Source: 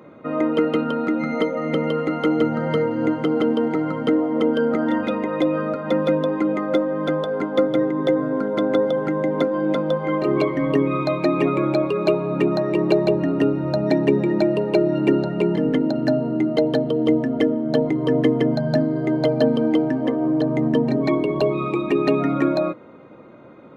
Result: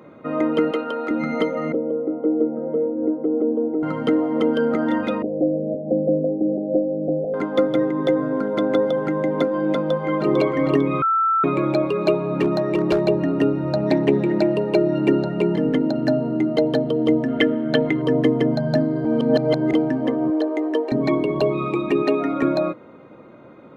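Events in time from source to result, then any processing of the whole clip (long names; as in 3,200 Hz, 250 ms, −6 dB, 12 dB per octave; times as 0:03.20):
0:00.71–0:01.11: Chebyshev high-pass filter 450 Hz
0:01.72–0:03.83: flat-topped band-pass 390 Hz, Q 1.1
0:05.22–0:07.34: Butterworth low-pass 750 Hz 96 dB per octave
0:09.75–0:10.30: delay throw 450 ms, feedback 45%, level −4 dB
0:11.02–0:11.44: beep over 1,330 Hz −15.5 dBFS
0:12.25–0:13.02: hard clipping −13 dBFS
0:13.73–0:14.55: highs frequency-modulated by the lows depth 0.11 ms
0:17.28–0:18.02: flat-topped bell 2,200 Hz +10 dB
0:19.05–0:19.73: reverse
0:20.30–0:20.92: linear-phase brick-wall high-pass 280 Hz
0:22.03–0:22.43: Chebyshev high-pass filter 310 Hz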